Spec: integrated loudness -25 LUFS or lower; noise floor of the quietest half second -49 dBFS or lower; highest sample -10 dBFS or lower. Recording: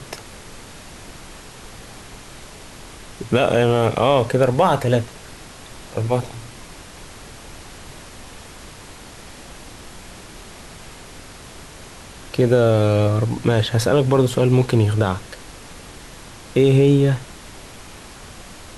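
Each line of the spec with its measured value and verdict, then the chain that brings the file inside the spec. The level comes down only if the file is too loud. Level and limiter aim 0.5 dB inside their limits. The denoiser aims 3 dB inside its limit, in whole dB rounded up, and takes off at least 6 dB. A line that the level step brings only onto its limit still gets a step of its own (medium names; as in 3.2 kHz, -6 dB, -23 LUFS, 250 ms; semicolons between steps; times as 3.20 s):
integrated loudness -18.0 LUFS: fail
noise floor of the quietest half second -39 dBFS: fail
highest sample -4.5 dBFS: fail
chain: noise reduction 6 dB, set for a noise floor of -39 dBFS; trim -7.5 dB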